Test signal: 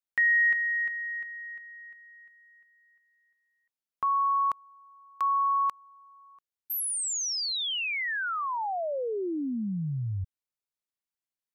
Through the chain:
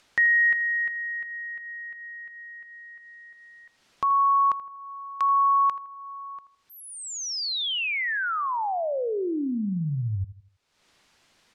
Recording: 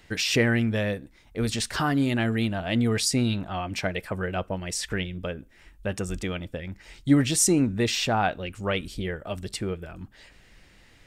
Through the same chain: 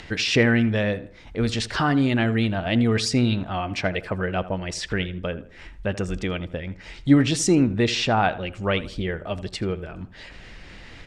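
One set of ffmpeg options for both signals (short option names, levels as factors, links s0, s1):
-filter_complex "[0:a]acompressor=mode=upward:threshold=0.0224:ratio=2.5:attack=1.7:release=365:knee=2.83:detection=peak,lowpass=5100,asplit=2[s0][s1];[s1]adelay=81,lowpass=f=2200:p=1,volume=0.178,asplit=2[s2][s3];[s3]adelay=81,lowpass=f=2200:p=1,volume=0.4,asplit=2[s4][s5];[s5]adelay=81,lowpass=f=2200:p=1,volume=0.4,asplit=2[s6][s7];[s7]adelay=81,lowpass=f=2200:p=1,volume=0.4[s8];[s0][s2][s4][s6][s8]amix=inputs=5:normalize=0,volume=1.5"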